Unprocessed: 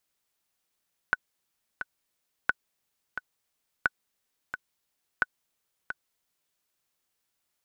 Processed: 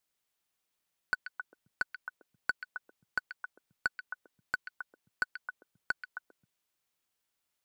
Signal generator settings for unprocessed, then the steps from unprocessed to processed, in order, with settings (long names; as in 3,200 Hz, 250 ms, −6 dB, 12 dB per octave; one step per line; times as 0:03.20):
click track 88 BPM, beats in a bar 2, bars 4, 1,490 Hz, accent 10 dB −9.5 dBFS
brickwall limiter −18.5 dBFS
leveller curve on the samples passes 2
on a send: echo through a band-pass that steps 133 ms, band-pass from 2,700 Hz, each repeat −1.4 octaves, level −3 dB